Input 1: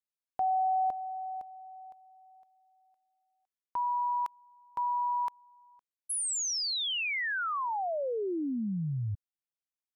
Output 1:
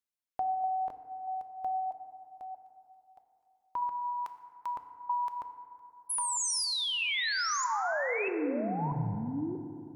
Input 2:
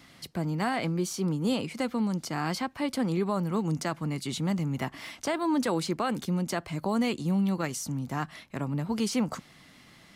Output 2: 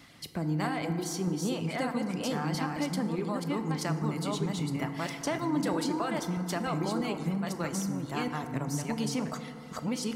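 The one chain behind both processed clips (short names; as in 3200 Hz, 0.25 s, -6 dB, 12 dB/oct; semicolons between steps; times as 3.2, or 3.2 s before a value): reverse delay 0.637 s, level -2 dB; compressor 3:1, threshold -28 dBFS; reverb removal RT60 0.76 s; FDN reverb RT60 2.7 s, high-frequency decay 0.35×, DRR 7 dB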